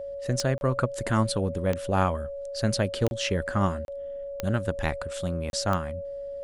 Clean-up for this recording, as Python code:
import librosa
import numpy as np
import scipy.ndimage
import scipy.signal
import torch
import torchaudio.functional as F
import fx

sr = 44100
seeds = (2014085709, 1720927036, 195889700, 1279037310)

y = fx.fix_declick_ar(x, sr, threshold=10.0)
y = fx.notch(y, sr, hz=560.0, q=30.0)
y = fx.fix_interpolate(y, sr, at_s=(0.58, 3.08, 3.85, 5.5), length_ms=31.0)